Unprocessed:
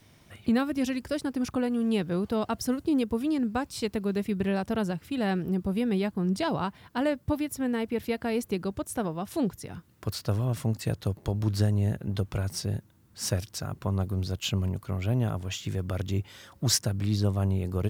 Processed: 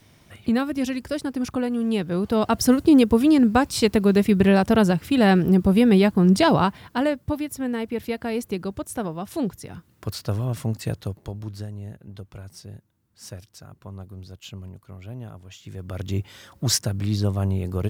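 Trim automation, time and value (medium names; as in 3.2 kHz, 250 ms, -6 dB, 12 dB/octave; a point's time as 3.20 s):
2.08 s +3 dB
2.66 s +11 dB
6.58 s +11 dB
7.25 s +2 dB
10.91 s +2 dB
11.67 s -10 dB
15.56 s -10 dB
16.12 s +3 dB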